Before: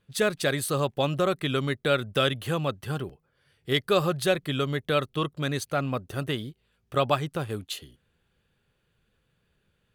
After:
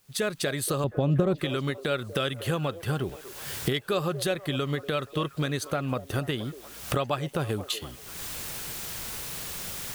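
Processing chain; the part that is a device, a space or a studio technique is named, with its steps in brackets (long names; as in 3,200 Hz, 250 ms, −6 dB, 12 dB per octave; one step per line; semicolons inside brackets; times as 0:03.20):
cheap recorder with automatic gain (white noise bed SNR 33 dB; camcorder AGC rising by 46 dB per second)
0:00.84–0:01.38: tilt shelving filter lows +10 dB, about 670 Hz
echo through a band-pass that steps 238 ms, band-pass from 480 Hz, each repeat 0.7 octaves, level −11.5 dB
level −5 dB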